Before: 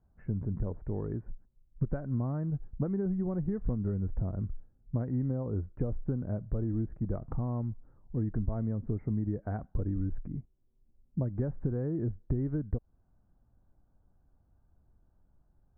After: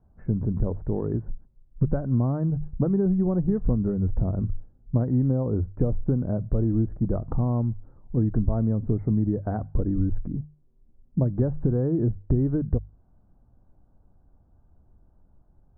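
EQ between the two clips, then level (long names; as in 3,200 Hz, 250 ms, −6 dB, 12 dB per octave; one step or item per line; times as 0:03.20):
low-pass filter 1,200 Hz 12 dB per octave
mains-hum notches 50/100/150 Hz
+9.0 dB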